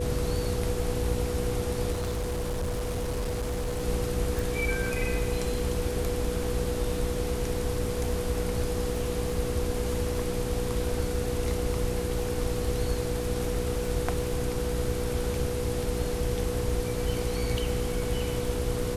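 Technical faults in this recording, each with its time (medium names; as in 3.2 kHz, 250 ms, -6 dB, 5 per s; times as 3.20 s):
crackle 18 per s -35 dBFS
hum 60 Hz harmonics 8 -34 dBFS
whine 490 Hz -32 dBFS
1.92–3.83 s: clipped -26.5 dBFS
4.39 s: pop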